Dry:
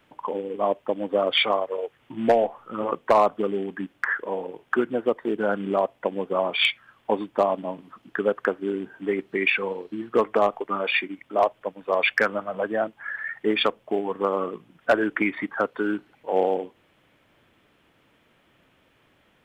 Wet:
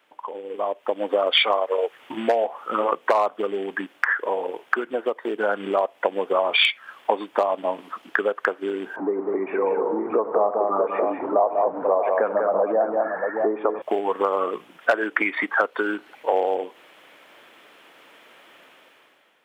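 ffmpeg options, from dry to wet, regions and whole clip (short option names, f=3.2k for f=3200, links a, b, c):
-filter_complex "[0:a]asettb=1/sr,asplit=3[a][b][c];[a]atrim=end=8.964[d];[b]atrim=start=8.96:end=13.82,asetpts=PTS-STARTPTS,afade=t=in:d=0.004:c=qsin,afade=t=out:st=4.856:d=0.004:c=qsin,aeval=exprs='val(0)+0.5*0.0237*sgn(val(0))':c=same,lowpass=f=1k:w=0.5412,lowpass=f=1k:w=1.3066,aecho=1:1:92|193|242|631:0.15|0.473|0.126|0.266,atrim=end_sample=214326[e];[c]atrim=start=13.816[f];[d][e]acrossfade=d=0.004:c1=hsin:c2=qsin[g];[g][f]acrossfade=d=0.004:c1=qsin:c2=hsin,acompressor=threshold=-29dB:ratio=6,highpass=460,dynaudnorm=f=160:g=9:m=13.5dB"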